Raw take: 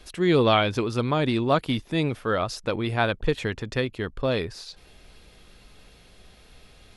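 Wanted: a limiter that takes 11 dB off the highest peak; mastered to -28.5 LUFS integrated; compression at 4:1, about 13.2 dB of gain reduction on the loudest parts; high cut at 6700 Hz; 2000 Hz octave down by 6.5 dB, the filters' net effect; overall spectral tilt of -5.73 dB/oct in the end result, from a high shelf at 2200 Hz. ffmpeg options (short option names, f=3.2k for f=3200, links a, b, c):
-af "lowpass=6.7k,equalizer=f=2k:t=o:g=-6,highshelf=f=2.2k:g=-5,acompressor=threshold=-33dB:ratio=4,volume=13dB,alimiter=limit=-18.5dB:level=0:latency=1"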